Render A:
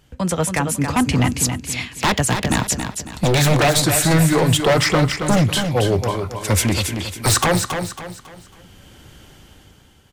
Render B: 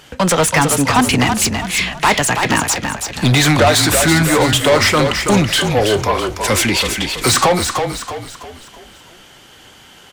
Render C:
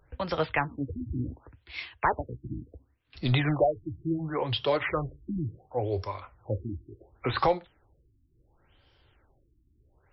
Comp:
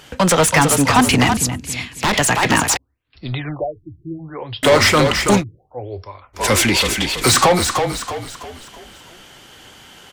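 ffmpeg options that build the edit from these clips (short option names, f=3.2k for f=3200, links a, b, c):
-filter_complex "[2:a]asplit=2[a][b];[1:a]asplit=4[c][d][e][f];[c]atrim=end=1.372[g];[0:a]atrim=start=1.368:end=2.132[h];[d]atrim=start=2.128:end=2.772[i];[a]atrim=start=2.768:end=4.632[j];[e]atrim=start=4.628:end=5.44[k];[b]atrim=start=5.34:end=6.43[l];[f]atrim=start=6.33[m];[g][h]acrossfade=d=0.004:c1=hsin:c2=hsin[n];[n][i]acrossfade=d=0.004:c1=hsin:c2=hsin[o];[o][j]acrossfade=d=0.004:c1=hsin:c2=hsin[p];[p][k]acrossfade=d=0.004:c1=hsin:c2=hsin[q];[q][l]acrossfade=d=0.1:c1=tri:c2=tri[r];[r][m]acrossfade=d=0.1:c1=tri:c2=tri"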